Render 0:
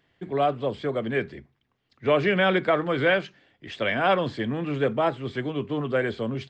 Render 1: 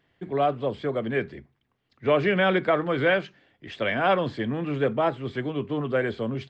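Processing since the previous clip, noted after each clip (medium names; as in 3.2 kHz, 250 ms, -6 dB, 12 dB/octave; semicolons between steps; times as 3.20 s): treble shelf 4.1 kHz -5.5 dB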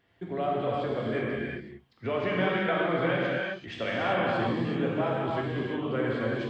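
compression 2:1, threshold -33 dBFS, peak gain reduction 9.5 dB; gated-style reverb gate 410 ms flat, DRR -5 dB; trim -2 dB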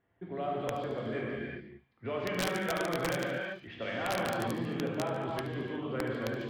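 integer overflow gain 17.5 dB; level-controlled noise filter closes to 1.6 kHz, open at -24.5 dBFS; feedback echo behind a high-pass 73 ms, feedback 60%, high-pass 2.5 kHz, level -15 dB; trim -5.5 dB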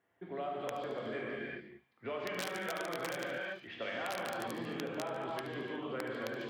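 high-pass 390 Hz 6 dB/octave; compression, threshold -36 dBFS, peak gain reduction 7.5 dB; trim +1 dB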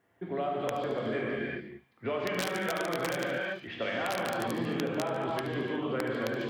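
bass shelf 290 Hz +6 dB; trim +5.5 dB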